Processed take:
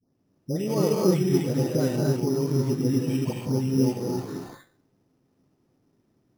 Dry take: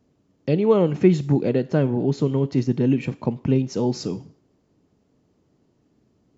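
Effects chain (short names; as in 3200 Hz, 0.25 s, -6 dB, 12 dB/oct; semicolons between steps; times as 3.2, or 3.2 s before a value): spectral delay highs late, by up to 0.363 s; non-linear reverb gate 0.3 s rising, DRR -2 dB; careless resampling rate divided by 8×, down none, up hold; gain -6.5 dB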